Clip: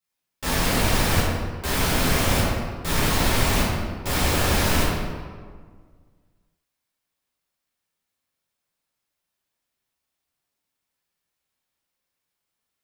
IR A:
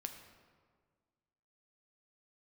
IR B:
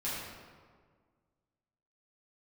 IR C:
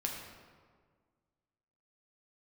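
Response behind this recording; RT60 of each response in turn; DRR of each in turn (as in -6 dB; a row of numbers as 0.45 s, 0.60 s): B; 1.7 s, 1.7 s, 1.7 s; 5.5 dB, -10.0 dB, -0.5 dB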